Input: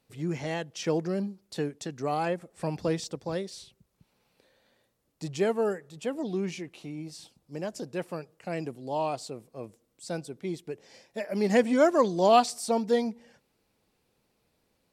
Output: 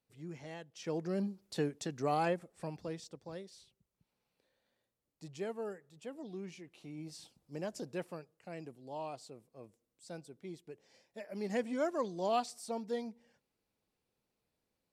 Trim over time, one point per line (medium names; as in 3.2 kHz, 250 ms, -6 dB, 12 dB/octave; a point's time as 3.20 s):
0.70 s -14.5 dB
1.26 s -3 dB
2.28 s -3 dB
2.84 s -13.5 dB
6.60 s -13.5 dB
7.09 s -5.5 dB
7.93 s -5.5 dB
8.35 s -12.5 dB